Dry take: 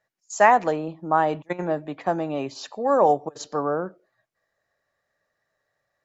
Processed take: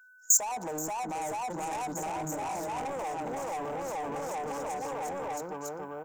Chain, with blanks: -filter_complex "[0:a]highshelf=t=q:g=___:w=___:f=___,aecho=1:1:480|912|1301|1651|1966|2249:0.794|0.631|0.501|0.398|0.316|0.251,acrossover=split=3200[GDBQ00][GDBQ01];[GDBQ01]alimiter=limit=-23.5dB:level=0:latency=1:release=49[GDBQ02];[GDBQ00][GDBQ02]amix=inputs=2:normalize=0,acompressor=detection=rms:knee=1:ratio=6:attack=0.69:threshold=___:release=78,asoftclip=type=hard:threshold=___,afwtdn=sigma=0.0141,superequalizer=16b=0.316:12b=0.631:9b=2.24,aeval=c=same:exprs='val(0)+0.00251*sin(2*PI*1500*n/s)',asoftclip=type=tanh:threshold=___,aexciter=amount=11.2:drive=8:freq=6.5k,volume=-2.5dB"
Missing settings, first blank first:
8.5, 3, 3.2k, -22dB, -27dB, -29dB